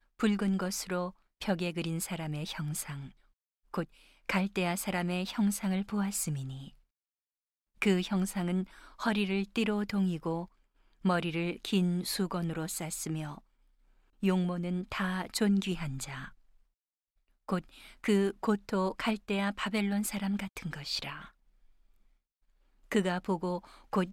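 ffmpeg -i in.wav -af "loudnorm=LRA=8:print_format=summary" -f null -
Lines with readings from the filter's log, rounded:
Input Integrated:    -32.8 LUFS
Input True Peak:     -16.0 dBTP
Input LRA:             4.6 LU
Input Threshold:     -43.2 LUFS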